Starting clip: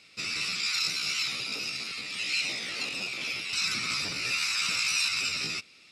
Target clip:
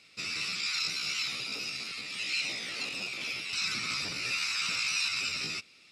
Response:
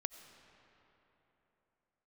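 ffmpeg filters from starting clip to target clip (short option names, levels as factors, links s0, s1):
-filter_complex "[0:a]acrossover=split=7100[s0][s1];[s1]acompressor=threshold=0.00631:ratio=4:attack=1:release=60[s2];[s0][s2]amix=inputs=2:normalize=0,volume=0.75"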